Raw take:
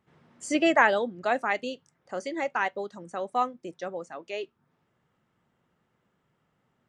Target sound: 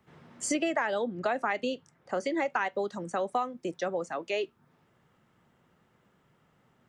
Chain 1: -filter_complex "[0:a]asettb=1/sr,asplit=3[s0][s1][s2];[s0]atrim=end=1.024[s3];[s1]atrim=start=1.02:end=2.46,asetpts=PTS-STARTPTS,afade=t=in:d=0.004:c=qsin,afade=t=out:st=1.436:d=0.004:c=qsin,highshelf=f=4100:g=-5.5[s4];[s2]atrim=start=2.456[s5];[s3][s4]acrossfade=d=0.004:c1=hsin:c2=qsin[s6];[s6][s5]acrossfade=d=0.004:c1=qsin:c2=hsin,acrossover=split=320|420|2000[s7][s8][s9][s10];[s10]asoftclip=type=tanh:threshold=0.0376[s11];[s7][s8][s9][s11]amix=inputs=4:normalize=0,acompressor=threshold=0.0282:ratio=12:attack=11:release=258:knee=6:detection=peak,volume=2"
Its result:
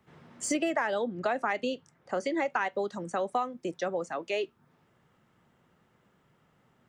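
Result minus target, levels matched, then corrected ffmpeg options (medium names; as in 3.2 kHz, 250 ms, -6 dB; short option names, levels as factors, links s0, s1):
saturation: distortion +9 dB
-filter_complex "[0:a]asettb=1/sr,asplit=3[s0][s1][s2];[s0]atrim=end=1.024[s3];[s1]atrim=start=1.02:end=2.46,asetpts=PTS-STARTPTS,afade=t=in:d=0.004:c=qsin,afade=t=out:st=1.436:d=0.004:c=qsin,highshelf=f=4100:g=-5.5[s4];[s2]atrim=start=2.456[s5];[s3][s4]acrossfade=d=0.004:c1=hsin:c2=qsin[s6];[s6][s5]acrossfade=d=0.004:c1=qsin:c2=hsin,acrossover=split=320|420|2000[s7][s8][s9][s10];[s10]asoftclip=type=tanh:threshold=0.0841[s11];[s7][s8][s9][s11]amix=inputs=4:normalize=0,acompressor=threshold=0.0282:ratio=12:attack=11:release=258:knee=6:detection=peak,volume=2"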